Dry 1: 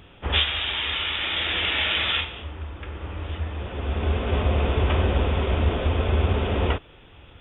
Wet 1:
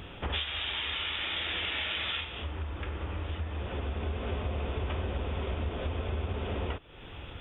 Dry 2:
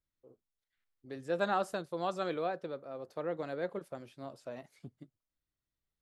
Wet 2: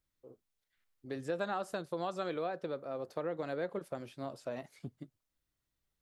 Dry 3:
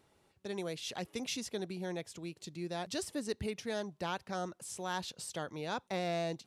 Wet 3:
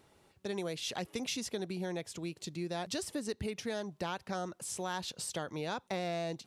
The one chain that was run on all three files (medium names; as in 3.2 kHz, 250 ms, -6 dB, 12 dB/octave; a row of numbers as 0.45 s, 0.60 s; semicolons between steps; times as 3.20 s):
compression 4:1, threshold -38 dBFS; trim +4.5 dB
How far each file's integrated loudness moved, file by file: -9.5 LU, -2.0 LU, +1.0 LU